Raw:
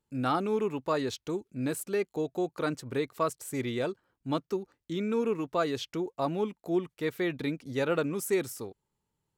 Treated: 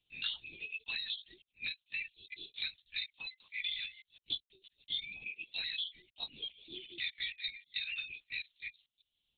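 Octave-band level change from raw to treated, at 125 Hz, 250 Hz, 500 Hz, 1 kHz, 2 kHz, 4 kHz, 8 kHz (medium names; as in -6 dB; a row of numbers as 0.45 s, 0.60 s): under -25 dB, -33.0 dB, -36.0 dB, -30.5 dB, -0.5 dB, +6.5 dB, under -35 dB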